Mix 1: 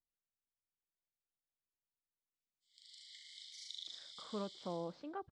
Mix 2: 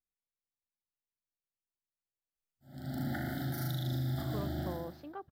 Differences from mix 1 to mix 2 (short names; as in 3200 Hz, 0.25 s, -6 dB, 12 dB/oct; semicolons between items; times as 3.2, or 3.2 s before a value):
background: remove steep high-pass 2200 Hz 96 dB/oct; master: remove steep low-pass 8100 Hz 48 dB/oct